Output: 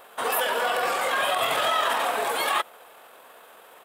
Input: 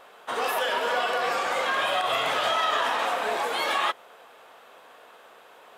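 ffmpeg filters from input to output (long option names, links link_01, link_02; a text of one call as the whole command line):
ffmpeg -i in.wav -af "atempo=1.5,aexciter=amount=3.2:drive=5.8:freq=8300,volume=1.5dB" out.wav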